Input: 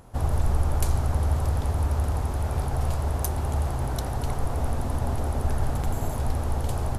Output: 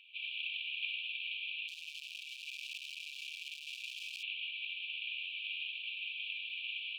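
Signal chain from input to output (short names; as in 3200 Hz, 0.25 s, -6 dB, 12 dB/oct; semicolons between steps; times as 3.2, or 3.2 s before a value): CVSD 16 kbps; 1.68–4.23 overloaded stage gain 31.5 dB; brick-wall FIR high-pass 2300 Hz; gain +11 dB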